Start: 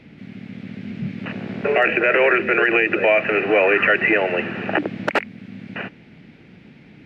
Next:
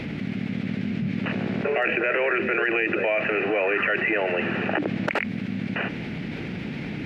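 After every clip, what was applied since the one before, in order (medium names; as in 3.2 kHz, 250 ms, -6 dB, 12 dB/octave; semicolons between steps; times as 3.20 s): level flattener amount 70%; trim -8.5 dB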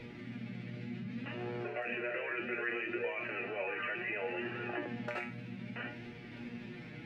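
feedback comb 120 Hz, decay 0.46 s, harmonics all, mix 90%; flange 0.65 Hz, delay 2 ms, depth 4.7 ms, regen +47%; trim +1 dB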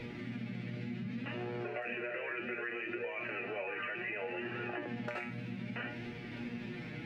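compression, threshold -40 dBFS, peak gain reduction 9 dB; trim +4 dB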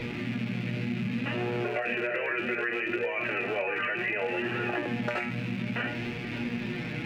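rattle on loud lows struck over -51 dBFS, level -40 dBFS; trim +9 dB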